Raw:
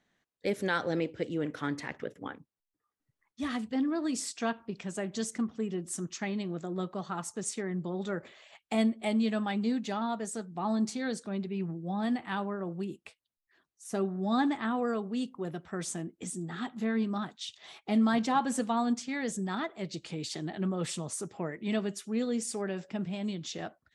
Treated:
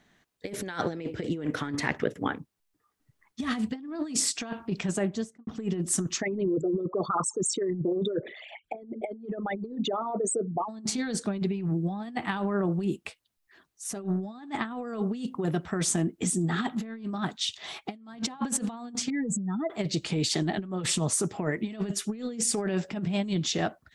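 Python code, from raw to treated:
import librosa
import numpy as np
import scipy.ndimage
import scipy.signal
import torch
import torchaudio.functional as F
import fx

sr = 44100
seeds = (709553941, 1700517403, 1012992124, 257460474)

y = fx.studio_fade_out(x, sr, start_s=4.83, length_s=0.64)
y = fx.envelope_sharpen(y, sr, power=3.0, at=(6.2, 10.68), fade=0.02)
y = fx.spec_expand(y, sr, power=2.6, at=(19.1, 19.7))
y = fx.low_shelf(y, sr, hz=170.0, db=3.5)
y = fx.notch(y, sr, hz=530.0, q=12.0)
y = fx.over_compress(y, sr, threshold_db=-35.0, ratio=-0.5)
y = F.gain(torch.from_numpy(y), 6.0).numpy()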